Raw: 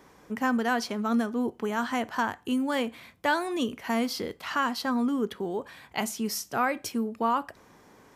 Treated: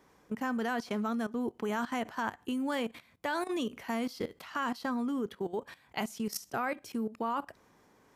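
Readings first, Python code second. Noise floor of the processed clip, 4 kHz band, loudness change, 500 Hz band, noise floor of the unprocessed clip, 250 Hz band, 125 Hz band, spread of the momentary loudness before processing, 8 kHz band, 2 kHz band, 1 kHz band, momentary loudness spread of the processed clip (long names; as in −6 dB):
−65 dBFS, −7.5 dB, −6.0 dB, −5.0 dB, −57 dBFS, −5.5 dB, −3.5 dB, 6 LU, −8.5 dB, −6.5 dB, −6.5 dB, 5 LU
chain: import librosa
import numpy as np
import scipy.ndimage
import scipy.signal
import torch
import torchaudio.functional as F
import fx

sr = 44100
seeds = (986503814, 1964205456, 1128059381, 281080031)

y = fx.level_steps(x, sr, step_db=16)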